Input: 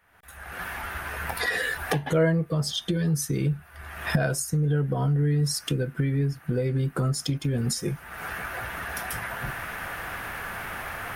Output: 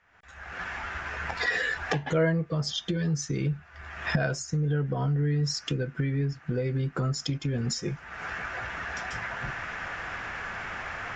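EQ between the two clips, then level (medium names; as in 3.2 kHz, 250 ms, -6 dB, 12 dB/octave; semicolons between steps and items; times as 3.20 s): rippled Chebyshev low-pass 7.4 kHz, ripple 3 dB; 0.0 dB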